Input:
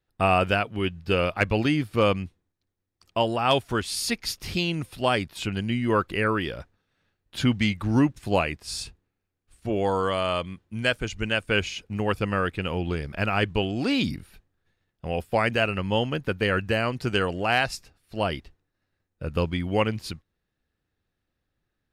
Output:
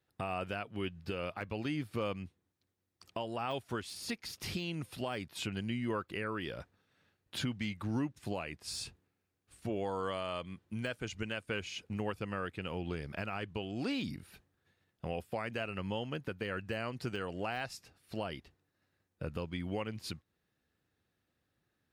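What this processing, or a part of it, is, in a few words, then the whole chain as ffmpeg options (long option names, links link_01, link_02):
podcast mastering chain: -af "highpass=86,deesser=0.7,acompressor=threshold=-42dB:ratio=2,alimiter=level_in=2dB:limit=-24dB:level=0:latency=1:release=280,volume=-2dB,volume=1dB" -ar 48000 -c:a libmp3lame -b:a 96k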